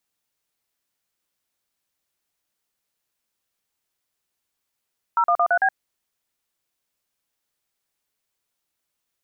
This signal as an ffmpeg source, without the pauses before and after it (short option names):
-f lavfi -i "aevalsrc='0.126*clip(min(mod(t,0.112),0.07-mod(t,0.112))/0.002,0,1)*(eq(floor(t/0.112),0)*(sin(2*PI*941*mod(t,0.112))+sin(2*PI*1336*mod(t,0.112)))+eq(floor(t/0.112),1)*(sin(2*PI*697*mod(t,0.112))+sin(2*PI*1209*mod(t,0.112)))+eq(floor(t/0.112),2)*(sin(2*PI*697*mod(t,0.112))+sin(2*PI*1209*mod(t,0.112)))+eq(floor(t/0.112),3)*(sin(2*PI*697*mod(t,0.112))+sin(2*PI*1477*mod(t,0.112)))+eq(floor(t/0.112),4)*(sin(2*PI*770*mod(t,0.112))+sin(2*PI*1633*mod(t,0.112))))':d=0.56:s=44100"